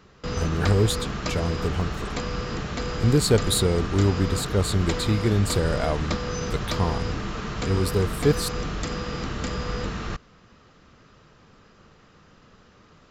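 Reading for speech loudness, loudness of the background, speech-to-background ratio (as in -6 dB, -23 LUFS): -25.0 LUFS, -30.5 LUFS, 5.5 dB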